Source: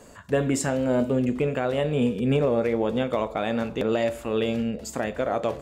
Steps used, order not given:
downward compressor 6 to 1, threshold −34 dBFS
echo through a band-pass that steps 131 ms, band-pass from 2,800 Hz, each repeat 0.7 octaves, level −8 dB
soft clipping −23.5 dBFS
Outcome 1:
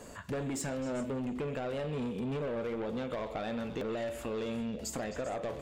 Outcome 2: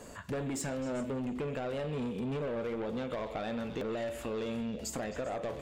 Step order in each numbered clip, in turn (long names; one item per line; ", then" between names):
soft clipping, then downward compressor, then echo through a band-pass that steps
soft clipping, then echo through a band-pass that steps, then downward compressor